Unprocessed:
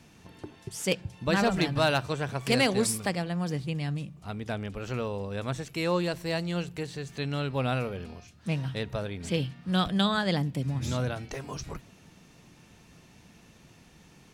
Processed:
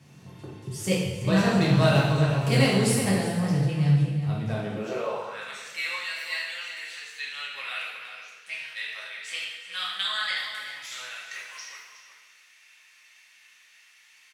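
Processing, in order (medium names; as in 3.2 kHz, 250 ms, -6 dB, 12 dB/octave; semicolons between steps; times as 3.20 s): echo from a far wall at 63 m, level -8 dB; high-pass sweep 120 Hz -> 2 kHz, 4.45–5.45 s; two-slope reverb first 0.98 s, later 2.8 s, DRR -6 dB; trim -5.5 dB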